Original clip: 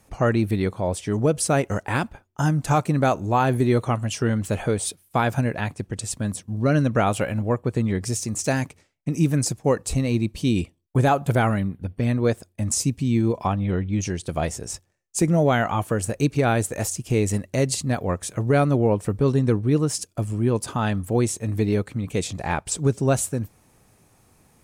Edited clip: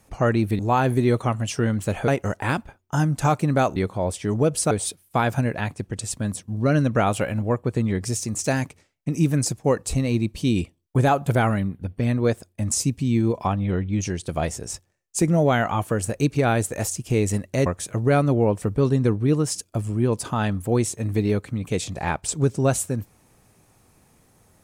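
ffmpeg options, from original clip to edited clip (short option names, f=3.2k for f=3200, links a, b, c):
-filter_complex "[0:a]asplit=6[a][b][c][d][e][f];[a]atrim=end=0.592[g];[b]atrim=start=3.218:end=4.712[h];[c]atrim=start=1.538:end=3.222[i];[d]atrim=start=0.588:end=1.542[j];[e]atrim=start=4.708:end=17.662[k];[f]atrim=start=18.088[l];[g][h]acrossfade=d=0.004:c1=hsin:c2=hsin[m];[m][i]acrossfade=d=0.004:c1=hsin:c2=hsin[n];[n][j]acrossfade=d=0.004:c1=hsin:c2=hsin[o];[o][k]acrossfade=d=0.004:c1=hsin:c2=hsin[p];[p][l]acrossfade=d=0.004:c1=hsin:c2=hsin"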